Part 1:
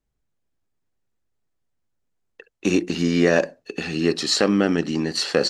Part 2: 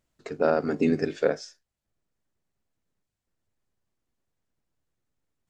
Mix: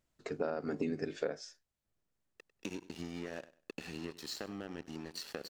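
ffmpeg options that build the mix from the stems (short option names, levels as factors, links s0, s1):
-filter_complex "[0:a]acompressor=threshold=0.0355:ratio=6,aeval=exprs='sgn(val(0))*max(abs(val(0))-0.0126,0)':c=same,volume=0.376,asplit=2[s0][s1];[s1]volume=0.126[s2];[1:a]volume=0.668[s3];[s2]aecho=0:1:98|196|294|392:1|0.22|0.0484|0.0106[s4];[s0][s3][s4]amix=inputs=3:normalize=0,acompressor=threshold=0.0251:ratio=6"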